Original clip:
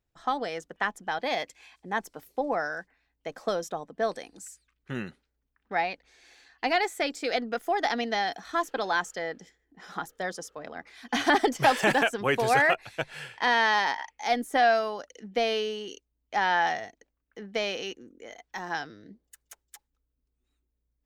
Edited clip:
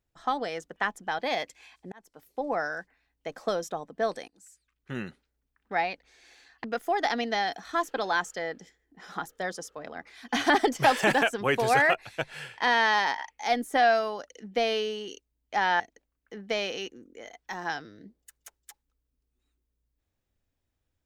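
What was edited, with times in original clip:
1.92–2.6 fade in
4.28–5.06 fade in, from -18.5 dB
6.64–7.44 cut
16.6–16.85 cut

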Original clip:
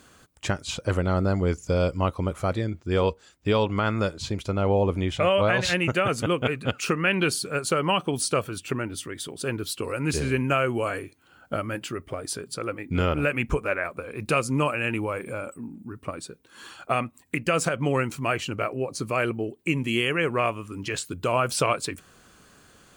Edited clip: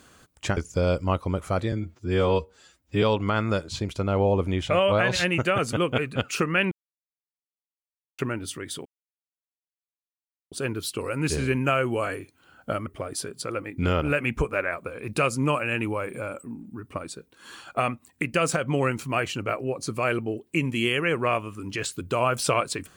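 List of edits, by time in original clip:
0.57–1.5 cut
2.65–3.52 stretch 1.5×
7.21–8.68 mute
9.35 insert silence 1.66 s
11.7–11.99 cut

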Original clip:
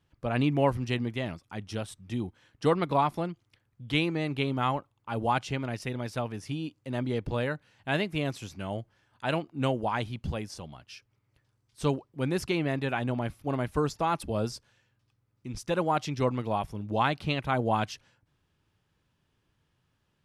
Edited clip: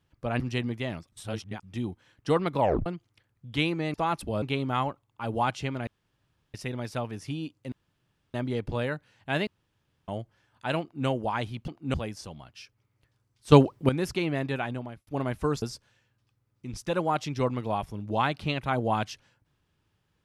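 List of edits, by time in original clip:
0.4–0.76 cut
1.48–1.99 reverse
2.95 tape stop 0.27 s
5.75 insert room tone 0.67 s
6.93 insert room tone 0.62 s
8.06–8.67 room tone
9.4–9.66 copy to 10.27
11.85–12.22 gain +11.5 dB
12.89–13.4 fade out
13.95–14.43 move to 4.3

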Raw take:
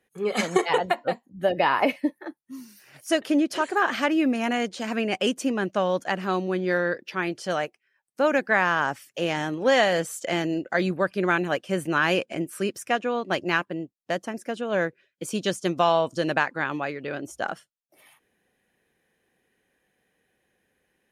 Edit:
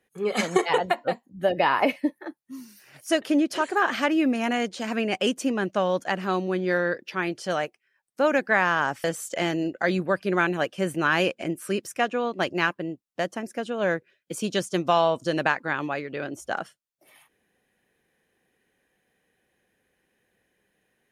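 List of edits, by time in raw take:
9.04–9.95 cut

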